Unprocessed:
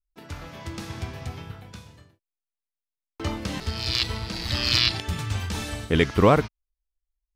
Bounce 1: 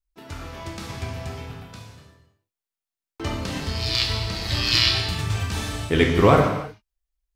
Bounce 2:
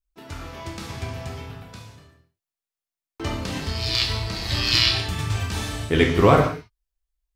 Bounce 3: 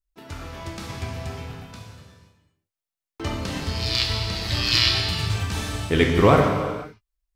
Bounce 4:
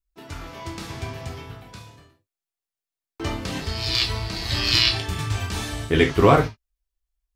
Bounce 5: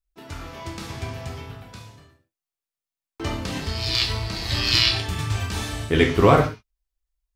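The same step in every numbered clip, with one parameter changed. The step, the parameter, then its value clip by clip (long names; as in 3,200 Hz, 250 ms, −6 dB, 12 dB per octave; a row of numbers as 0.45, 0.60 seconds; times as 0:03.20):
reverb whose tail is shaped and stops, gate: 350, 230, 540, 100, 160 milliseconds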